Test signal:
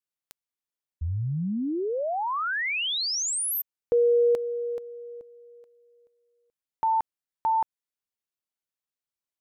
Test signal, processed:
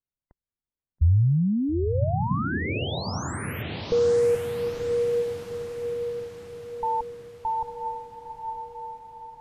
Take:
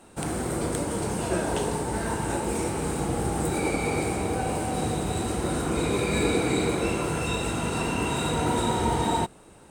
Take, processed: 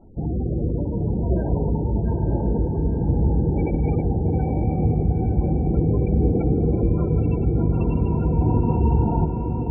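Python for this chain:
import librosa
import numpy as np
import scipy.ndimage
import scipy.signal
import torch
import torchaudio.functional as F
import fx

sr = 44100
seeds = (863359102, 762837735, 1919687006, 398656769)

y = fx.riaa(x, sr, side='playback')
y = fx.spec_gate(y, sr, threshold_db=-20, keep='strong')
y = fx.echo_diffused(y, sr, ms=914, feedback_pct=53, wet_db=-5)
y = y * librosa.db_to_amplitude(-3.0)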